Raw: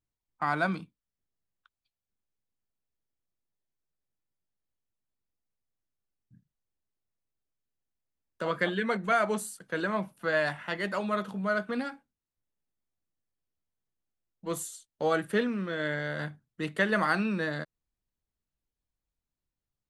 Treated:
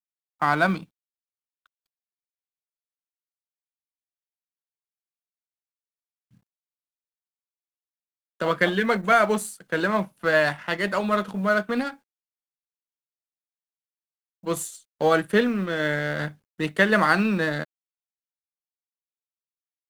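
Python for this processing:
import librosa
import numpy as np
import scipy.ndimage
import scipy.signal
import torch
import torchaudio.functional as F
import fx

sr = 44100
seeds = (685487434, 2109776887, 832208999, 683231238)

y = fx.law_mismatch(x, sr, coded='A')
y = y * 10.0 ** (8.0 / 20.0)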